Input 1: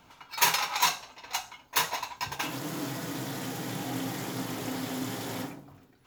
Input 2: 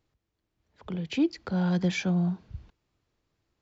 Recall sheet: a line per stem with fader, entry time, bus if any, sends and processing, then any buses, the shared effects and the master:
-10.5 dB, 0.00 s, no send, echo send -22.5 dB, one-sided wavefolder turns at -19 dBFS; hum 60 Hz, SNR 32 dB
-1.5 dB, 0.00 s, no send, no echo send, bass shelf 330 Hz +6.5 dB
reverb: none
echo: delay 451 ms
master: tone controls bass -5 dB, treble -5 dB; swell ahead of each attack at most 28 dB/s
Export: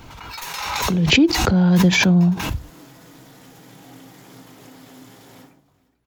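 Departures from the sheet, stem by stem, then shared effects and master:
stem 2 -1.5 dB -> +6.0 dB; master: missing tone controls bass -5 dB, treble -5 dB

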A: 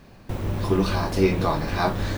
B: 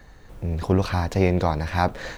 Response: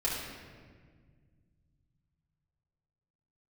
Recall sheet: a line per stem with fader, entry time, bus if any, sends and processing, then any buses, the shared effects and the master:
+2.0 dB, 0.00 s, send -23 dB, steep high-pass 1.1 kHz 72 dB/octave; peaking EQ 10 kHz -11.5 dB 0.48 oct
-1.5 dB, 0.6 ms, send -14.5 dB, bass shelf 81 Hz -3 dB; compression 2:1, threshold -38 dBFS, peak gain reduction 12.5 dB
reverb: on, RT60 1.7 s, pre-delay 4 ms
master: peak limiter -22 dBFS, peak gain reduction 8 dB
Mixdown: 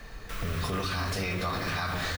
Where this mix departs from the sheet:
stem A: missing peaking EQ 10 kHz -11.5 dB 0.48 oct; reverb return +10.0 dB

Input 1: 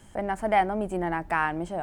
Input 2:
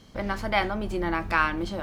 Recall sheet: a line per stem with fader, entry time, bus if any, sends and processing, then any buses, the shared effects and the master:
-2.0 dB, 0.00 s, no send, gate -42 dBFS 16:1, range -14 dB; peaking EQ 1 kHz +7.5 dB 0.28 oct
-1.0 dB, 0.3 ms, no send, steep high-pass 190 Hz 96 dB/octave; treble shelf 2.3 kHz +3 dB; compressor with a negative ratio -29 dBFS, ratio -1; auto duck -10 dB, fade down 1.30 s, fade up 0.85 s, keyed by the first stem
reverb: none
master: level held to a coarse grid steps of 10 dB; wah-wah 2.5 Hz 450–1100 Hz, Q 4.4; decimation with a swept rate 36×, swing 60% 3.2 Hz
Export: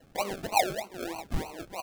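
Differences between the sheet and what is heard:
stem 2 -1.0 dB -> +8.5 dB; master: missing level held to a coarse grid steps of 10 dB

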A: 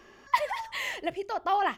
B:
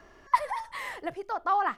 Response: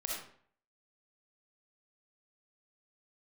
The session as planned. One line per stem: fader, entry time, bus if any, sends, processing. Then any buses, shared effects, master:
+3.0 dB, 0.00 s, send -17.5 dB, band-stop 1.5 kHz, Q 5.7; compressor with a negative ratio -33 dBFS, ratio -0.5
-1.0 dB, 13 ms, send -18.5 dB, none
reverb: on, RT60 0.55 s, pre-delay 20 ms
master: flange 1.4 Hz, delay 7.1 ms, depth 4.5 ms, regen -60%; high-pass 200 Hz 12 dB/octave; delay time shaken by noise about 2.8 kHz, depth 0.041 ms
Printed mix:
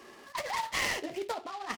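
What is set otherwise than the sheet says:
stem B -1.0 dB -> -12.5 dB; reverb return -9.5 dB

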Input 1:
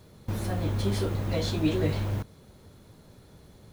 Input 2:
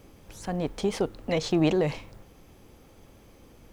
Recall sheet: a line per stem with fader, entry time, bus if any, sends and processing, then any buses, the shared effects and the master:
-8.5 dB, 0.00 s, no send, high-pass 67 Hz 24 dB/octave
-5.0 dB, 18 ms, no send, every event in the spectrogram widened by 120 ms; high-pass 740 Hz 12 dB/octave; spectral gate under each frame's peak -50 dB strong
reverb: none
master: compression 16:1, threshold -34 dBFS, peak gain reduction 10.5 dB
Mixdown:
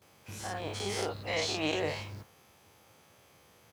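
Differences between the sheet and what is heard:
stem 1 -8.5 dB -> -14.5 dB; master: missing compression 16:1, threshold -34 dBFS, peak gain reduction 10.5 dB

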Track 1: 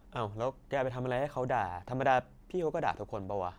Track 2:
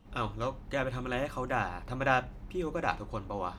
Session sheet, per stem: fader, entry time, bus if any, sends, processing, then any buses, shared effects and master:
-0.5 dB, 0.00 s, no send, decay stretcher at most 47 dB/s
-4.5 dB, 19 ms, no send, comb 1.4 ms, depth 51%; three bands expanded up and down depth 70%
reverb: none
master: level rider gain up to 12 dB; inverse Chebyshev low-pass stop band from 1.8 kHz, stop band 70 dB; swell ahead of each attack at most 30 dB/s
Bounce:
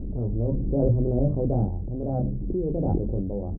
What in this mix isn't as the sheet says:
stem 1 -0.5 dB -> +6.0 dB; stem 2 -4.5 dB -> +6.0 dB

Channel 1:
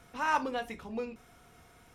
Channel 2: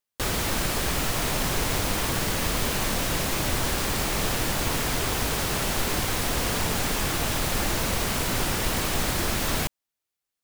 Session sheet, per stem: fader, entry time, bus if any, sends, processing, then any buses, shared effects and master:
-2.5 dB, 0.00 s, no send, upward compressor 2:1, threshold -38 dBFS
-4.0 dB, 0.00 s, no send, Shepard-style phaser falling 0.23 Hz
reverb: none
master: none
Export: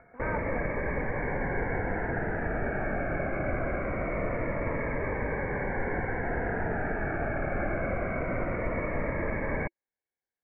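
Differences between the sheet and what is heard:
stem 2 -4.0 dB -> +4.5 dB; master: extra rippled Chebyshev low-pass 2.3 kHz, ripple 9 dB

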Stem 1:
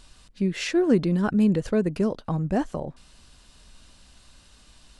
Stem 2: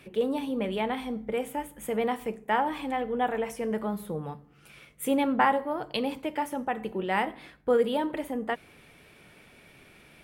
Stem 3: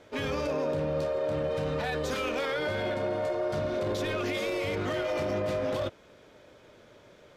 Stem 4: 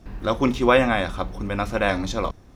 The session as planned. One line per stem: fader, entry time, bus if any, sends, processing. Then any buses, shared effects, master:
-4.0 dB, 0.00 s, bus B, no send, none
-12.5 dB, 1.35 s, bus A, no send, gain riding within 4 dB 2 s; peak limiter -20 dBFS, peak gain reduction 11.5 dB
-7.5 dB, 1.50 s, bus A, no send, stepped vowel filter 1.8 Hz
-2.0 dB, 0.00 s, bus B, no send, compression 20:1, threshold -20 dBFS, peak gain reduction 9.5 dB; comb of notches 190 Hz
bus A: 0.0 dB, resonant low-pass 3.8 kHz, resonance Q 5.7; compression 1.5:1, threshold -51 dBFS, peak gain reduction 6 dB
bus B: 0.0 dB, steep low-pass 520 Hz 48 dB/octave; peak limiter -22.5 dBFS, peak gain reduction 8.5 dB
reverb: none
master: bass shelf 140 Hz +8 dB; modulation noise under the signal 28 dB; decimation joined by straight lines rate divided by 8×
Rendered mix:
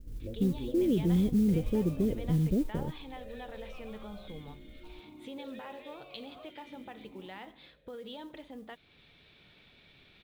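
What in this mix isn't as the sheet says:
stem 2: entry 1.35 s -> 0.20 s; stem 4 -2.0 dB -> -13.0 dB; master: missing decimation joined by straight lines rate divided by 8×

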